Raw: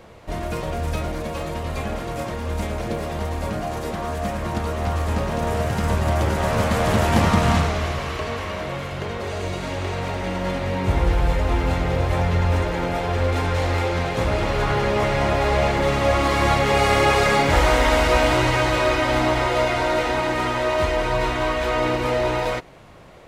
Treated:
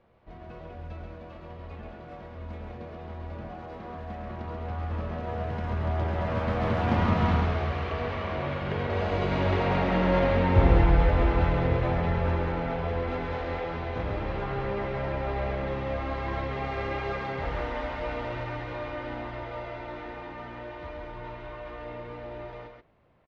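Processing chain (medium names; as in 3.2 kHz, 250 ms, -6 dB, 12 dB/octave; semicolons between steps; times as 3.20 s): Doppler pass-by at 9.88 s, 12 m/s, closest 13 m; distance through air 280 m; delay 135 ms -4.5 dB; trim +2 dB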